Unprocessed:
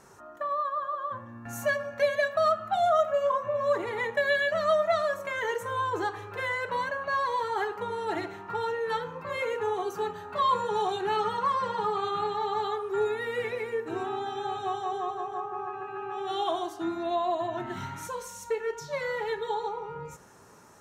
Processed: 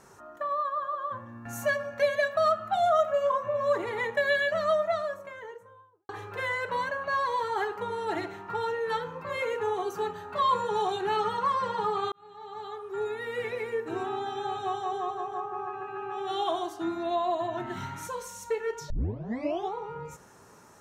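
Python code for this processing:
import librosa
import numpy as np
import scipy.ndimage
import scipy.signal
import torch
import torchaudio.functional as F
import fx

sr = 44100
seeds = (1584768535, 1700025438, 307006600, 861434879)

y = fx.studio_fade_out(x, sr, start_s=4.37, length_s=1.72)
y = fx.edit(y, sr, fx.fade_in_span(start_s=12.12, length_s=1.55),
    fx.tape_start(start_s=18.9, length_s=0.84), tone=tone)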